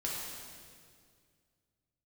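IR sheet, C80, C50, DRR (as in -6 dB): 1.0 dB, -1.0 dB, -5.0 dB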